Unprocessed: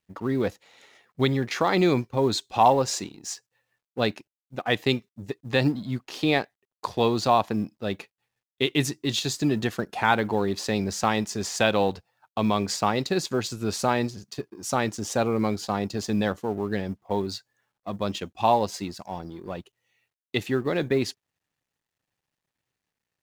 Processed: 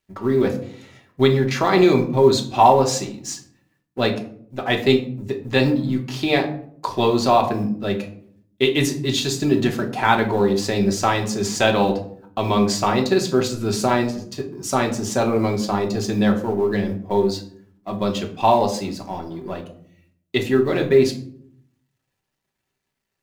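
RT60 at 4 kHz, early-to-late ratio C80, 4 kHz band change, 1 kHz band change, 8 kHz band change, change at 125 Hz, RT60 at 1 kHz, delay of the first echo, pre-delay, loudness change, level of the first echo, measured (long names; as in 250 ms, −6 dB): 0.35 s, 15.0 dB, +4.5 dB, +5.0 dB, +4.5 dB, +5.5 dB, 0.55 s, no echo audible, 3 ms, +6.0 dB, no echo audible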